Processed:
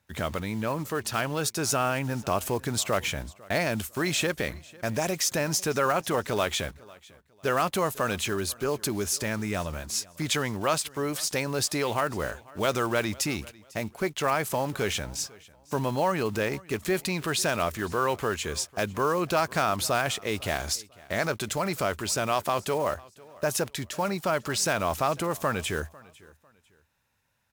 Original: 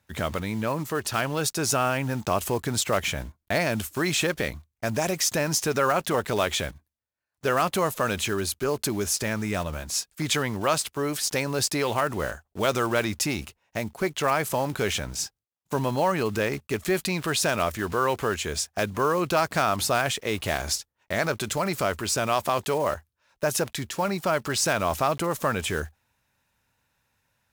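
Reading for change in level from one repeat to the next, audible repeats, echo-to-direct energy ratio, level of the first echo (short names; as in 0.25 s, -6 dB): -11.0 dB, 2, -22.5 dB, -23.0 dB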